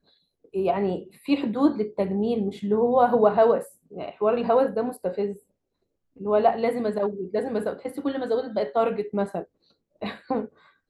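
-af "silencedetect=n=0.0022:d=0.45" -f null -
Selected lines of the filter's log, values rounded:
silence_start: 5.42
silence_end: 6.16 | silence_duration: 0.74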